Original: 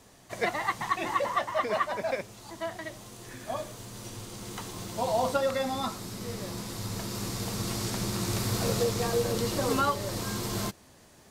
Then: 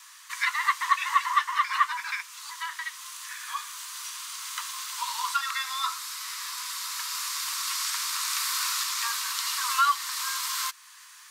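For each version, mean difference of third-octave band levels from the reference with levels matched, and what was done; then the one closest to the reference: 18.5 dB: steep high-pass 980 Hz 96 dB/oct; in parallel at -2.5 dB: compressor, threshold -48 dBFS, peak gain reduction 23 dB; on the sum: gain +5.5 dB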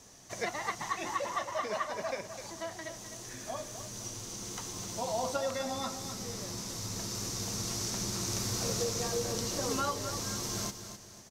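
3.0 dB: bell 6000 Hz +12.5 dB 0.51 oct; in parallel at 0 dB: compressor, threshold -37 dBFS, peak gain reduction 14.5 dB; on the sum: feedback echo 0.256 s, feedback 37%, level -10 dB; gain -8.5 dB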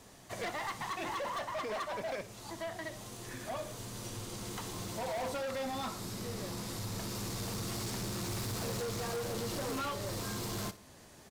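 4.0 dB: in parallel at 0 dB: compressor, threshold -39 dBFS, peak gain reduction 16 dB; on the sum: hard clip -28.5 dBFS, distortion -8 dB; feedback echo 60 ms, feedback 36%, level -16 dB; gain -6 dB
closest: second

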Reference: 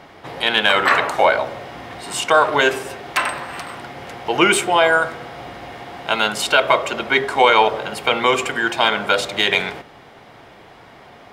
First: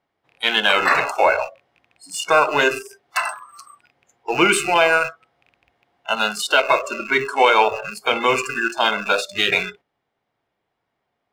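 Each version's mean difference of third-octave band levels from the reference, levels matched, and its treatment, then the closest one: 11.5 dB: rattling part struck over -37 dBFS, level -9 dBFS; spectral noise reduction 29 dB; in parallel at -9.5 dB: crossover distortion -30 dBFS; on the sum: gain -3.5 dB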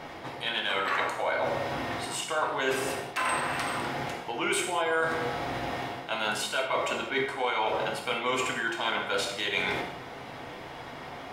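7.5 dB: reverse; compressor 6:1, threshold -29 dBFS, peak gain reduction 19 dB; reverse; non-linear reverb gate 0.23 s falling, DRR 1 dB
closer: second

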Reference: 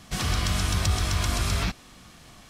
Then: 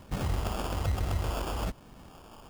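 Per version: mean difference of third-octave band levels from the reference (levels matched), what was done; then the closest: 5.5 dB: compressor 2:1, threshold -30 dBFS, peak gain reduction 6.5 dB; phaser stages 2, 1.2 Hz, lowest notch 130–1500 Hz; sample-rate reducer 2000 Hz, jitter 0%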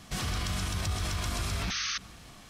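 3.0 dB: Schroeder reverb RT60 1.9 s, combs from 32 ms, DRR 15.5 dB; painted sound noise, 1.7–1.98, 1100–6500 Hz -22 dBFS; limiter -22 dBFS, peak gain reduction 11 dB; gain -1.5 dB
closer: second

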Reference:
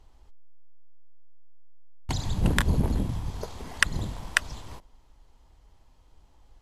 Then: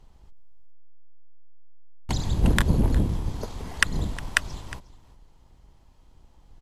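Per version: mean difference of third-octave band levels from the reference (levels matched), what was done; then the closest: 1.5 dB: octaver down 1 oct, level +1 dB; echo 0.36 s -19 dB; gain +1 dB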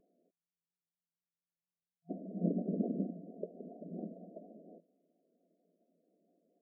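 21.0 dB: FFT band-pass 170–720 Hz; vibrato 4.3 Hz 75 cents; gain -3.5 dB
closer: first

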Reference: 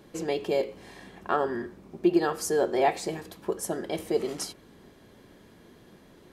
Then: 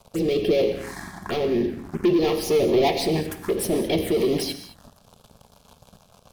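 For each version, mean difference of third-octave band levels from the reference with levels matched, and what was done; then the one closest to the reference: 6.0 dB: sample leveller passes 5; envelope phaser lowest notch 300 Hz, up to 1500 Hz, full sweep at -15.5 dBFS; rotary speaker horn 0.85 Hz, later 6.7 Hz, at 1.81; non-linear reverb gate 0.24 s flat, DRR 9 dB; gain -1.5 dB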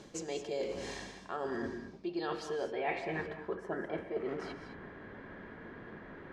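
9.0 dB: notches 60/120/180/240/300/360 Hz; reverse; compressor 6:1, threshold -40 dBFS, peak gain reduction 21 dB; reverse; low-pass sweep 6700 Hz -> 1700 Hz, 1.52–3.37; non-linear reverb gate 0.24 s rising, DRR 8 dB; gain +4 dB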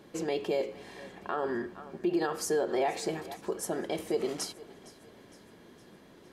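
3.0 dB: low shelf 91 Hz -9.5 dB; on a send: thinning echo 0.461 s, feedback 54%, level -20 dB; on the sum: limiter -20.5 dBFS, peak gain reduction 8.5 dB; high shelf 8500 Hz -4.5 dB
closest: third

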